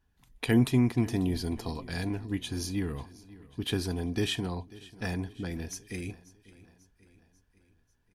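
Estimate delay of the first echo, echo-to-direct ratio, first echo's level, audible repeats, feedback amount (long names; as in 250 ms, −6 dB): 542 ms, −18.5 dB, −20.0 dB, 3, 53%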